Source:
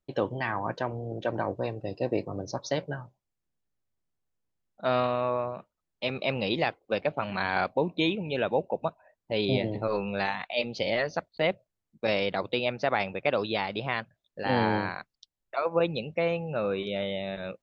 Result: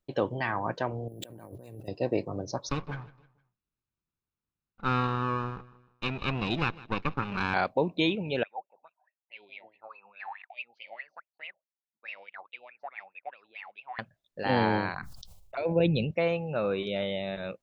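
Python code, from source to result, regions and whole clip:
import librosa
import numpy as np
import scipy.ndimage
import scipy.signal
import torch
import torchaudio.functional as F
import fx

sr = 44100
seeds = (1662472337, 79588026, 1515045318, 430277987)

y = fx.chain(x, sr, fx.peak_eq(hz=1100.0, db=-9.5, octaves=2.3),
    fx.over_compress(threshold_db=-46.0, ratio=-1.0),
    fx.resample_bad(factor=4, down='none', up='hold'), at=(1.08, 1.88))
y = fx.chain(y, sr, fx.lower_of_two(delay_ms=0.77),
    fx.air_absorb(metres=150.0),
    fx.echo_feedback(ms=155, feedback_pct=42, wet_db=-20), at=(2.69, 7.54))
y = fx.chain(y, sr, fx.low_shelf(hz=120.0, db=-8.5),
    fx.wah_lfo(hz=4.7, low_hz=750.0, high_hz=2700.0, q=15.0), at=(8.43, 13.99))
y = fx.chain(y, sr, fx.env_phaser(low_hz=260.0, high_hz=1200.0, full_db=-31.5),
    fx.low_shelf(hz=180.0, db=12.0),
    fx.sustainer(db_per_s=34.0), at=(14.94, 16.11))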